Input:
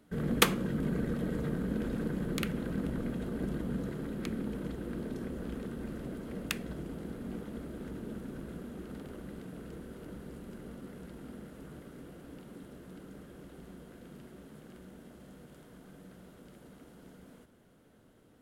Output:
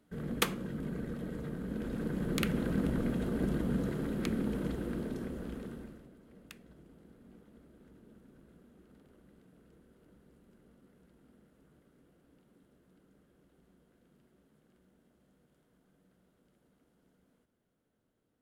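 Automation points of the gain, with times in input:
1.57 s -6 dB
2.54 s +3 dB
4.73 s +3 dB
5.75 s -4 dB
6.11 s -17 dB

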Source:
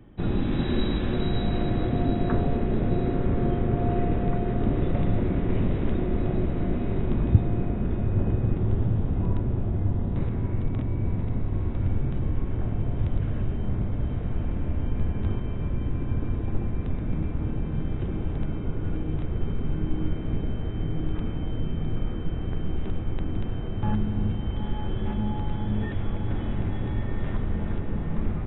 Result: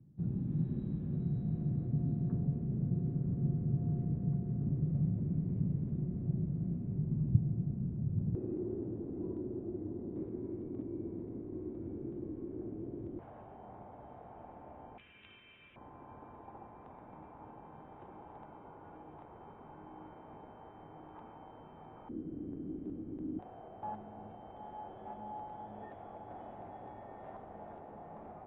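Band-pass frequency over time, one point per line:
band-pass, Q 4.5
150 Hz
from 8.35 s 340 Hz
from 13.19 s 800 Hz
from 14.98 s 2700 Hz
from 15.76 s 870 Hz
from 22.09 s 290 Hz
from 23.39 s 740 Hz

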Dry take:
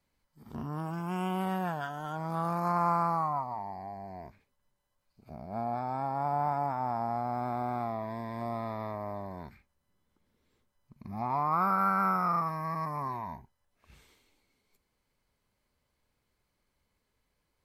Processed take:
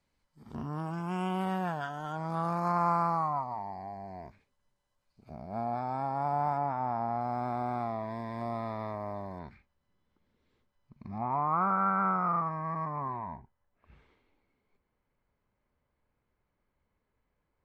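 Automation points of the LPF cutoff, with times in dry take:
8600 Hz
from 6.57 s 3800 Hz
from 7.21 s 8200 Hz
from 9.39 s 4400 Hz
from 11.18 s 1900 Hz

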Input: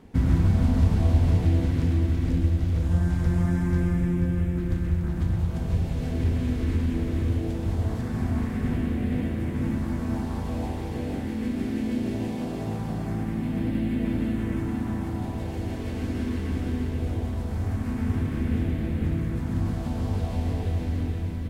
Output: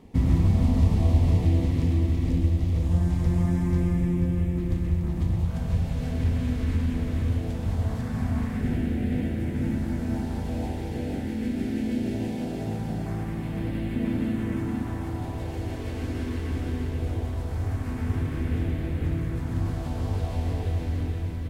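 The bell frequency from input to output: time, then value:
bell -13 dB 0.26 oct
1500 Hz
from 5.46 s 350 Hz
from 8.61 s 1100 Hz
from 13.06 s 240 Hz
from 13.96 s 60 Hz
from 14.82 s 210 Hz

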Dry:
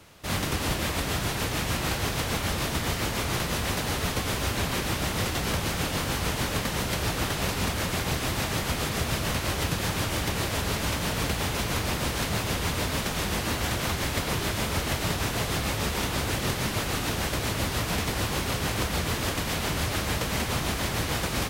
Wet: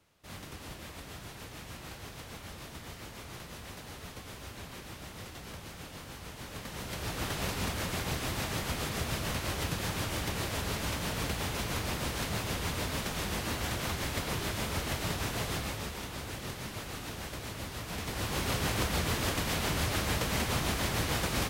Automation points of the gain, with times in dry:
6.33 s -17 dB
7.32 s -6 dB
15.52 s -6 dB
15.99 s -12 dB
17.83 s -12 dB
18.48 s -3 dB

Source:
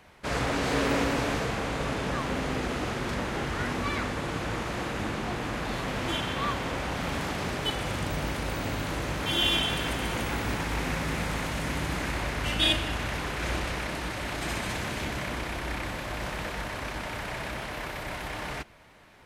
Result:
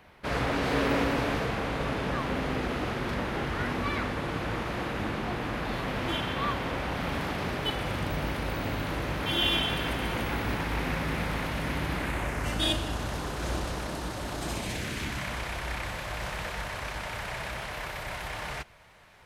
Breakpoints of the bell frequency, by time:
bell -9 dB 0.96 oct
11.93 s 7400 Hz
12.73 s 2200 Hz
14.47 s 2200 Hz
15.39 s 280 Hz

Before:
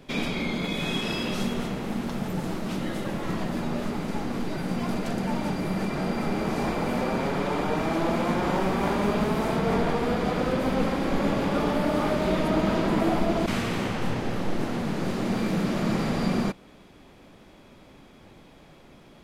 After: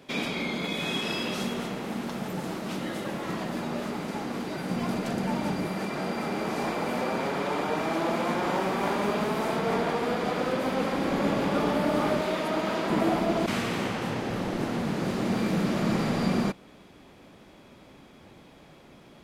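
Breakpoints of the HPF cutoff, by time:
HPF 6 dB/oct
240 Hz
from 4.7 s 100 Hz
from 5.67 s 300 Hz
from 10.94 s 130 Hz
from 12.21 s 510 Hz
from 12.9 s 160 Hz
from 14.3 s 65 Hz

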